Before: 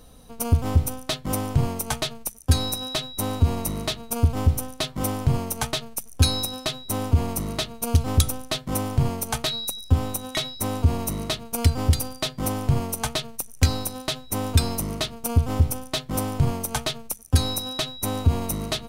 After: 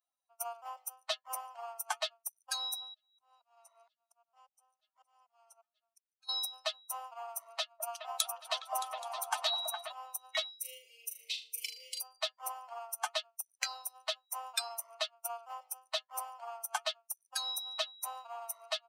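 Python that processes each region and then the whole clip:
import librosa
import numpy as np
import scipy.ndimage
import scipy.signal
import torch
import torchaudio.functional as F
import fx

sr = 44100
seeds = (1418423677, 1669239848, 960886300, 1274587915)

y = fx.chain(x, sr, fx.lowpass(hz=10000.0, slope=12),
    fx.auto_swell(attack_ms=534.0),
    fx.band_squash(depth_pct=40), at=(2.81, 6.29))
y = fx.chain(y, sr, fx.highpass(hz=530.0, slope=24),
    fx.echo_opening(ms=207, hz=750, octaves=2, feedback_pct=70, wet_db=0), at=(7.59, 9.92))
y = fx.chain(y, sr, fx.ellip_bandstop(low_hz=490.0, high_hz=2200.0, order=3, stop_db=50),
    fx.room_flutter(wall_m=6.7, rt60_s=0.65), at=(10.59, 12.01))
y = fx.bin_expand(y, sr, power=2.0)
y = scipy.signal.sosfilt(scipy.signal.butter(12, 630.0, 'highpass', fs=sr, output='sos'), y)
y = fx.high_shelf(y, sr, hz=7500.0, db=-6.5)
y = F.gain(torch.from_numpy(y), -2.0).numpy()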